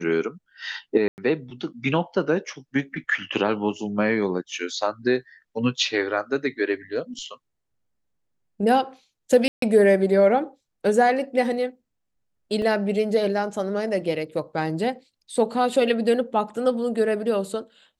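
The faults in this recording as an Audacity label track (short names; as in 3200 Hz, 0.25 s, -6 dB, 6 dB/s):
1.080000	1.180000	gap 99 ms
9.480000	9.620000	gap 0.143 s
12.620000	12.620000	gap 2.3 ms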